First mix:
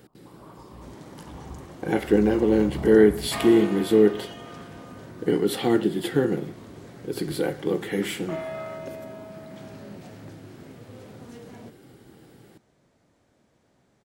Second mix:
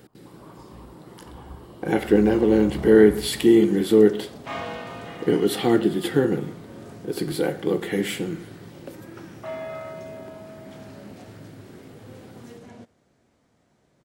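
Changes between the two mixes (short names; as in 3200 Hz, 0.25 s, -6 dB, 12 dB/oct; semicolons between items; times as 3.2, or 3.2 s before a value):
speech: send +11.0 dB; second sound: entry +1.15 s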